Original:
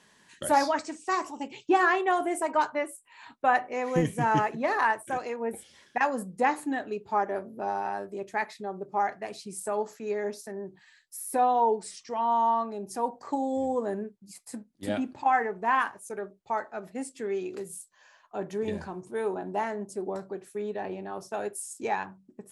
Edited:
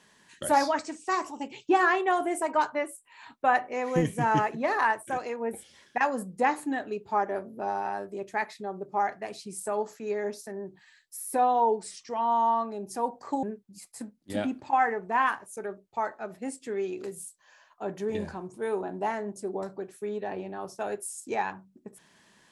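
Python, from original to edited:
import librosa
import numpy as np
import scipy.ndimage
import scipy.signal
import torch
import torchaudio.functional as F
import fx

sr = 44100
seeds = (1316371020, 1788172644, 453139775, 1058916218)

y = fx.edit(x, sr, fx.cut(start_s=13.43, length_s=0.53), tone=tone)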